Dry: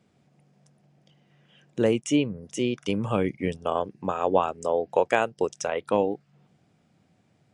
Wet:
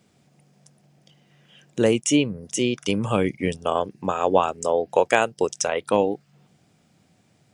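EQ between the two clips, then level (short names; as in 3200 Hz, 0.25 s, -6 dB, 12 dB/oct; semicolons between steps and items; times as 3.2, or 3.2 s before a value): high shelf 4000 Hz +10 dB; +3.0 dB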